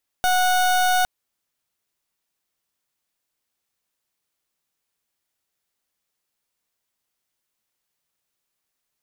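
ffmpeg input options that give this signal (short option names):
-f lavfi -i "aevalsrc='0.119*(2*lt(mod(734*t,1),0.3)-1)':d=0.81:s=44100"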